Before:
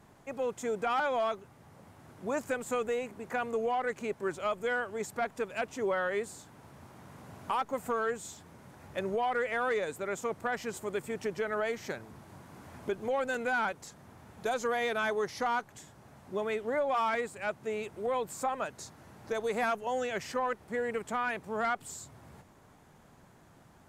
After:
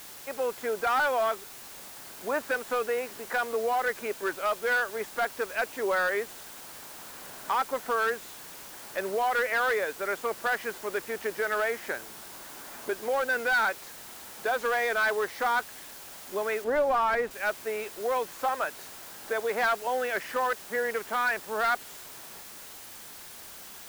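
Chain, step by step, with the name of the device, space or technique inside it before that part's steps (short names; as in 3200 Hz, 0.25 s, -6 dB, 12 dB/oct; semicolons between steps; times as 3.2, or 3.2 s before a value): drive-through speaker (BPF 360–3100 Hz; bell 1600 Hz +6 dB 0.57 oct; hard clip -25 dBFS, distortion -17 dB; white noise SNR 15 dB); 16.64–17.31 tilt -2.5 dB/oct; gain +4 dB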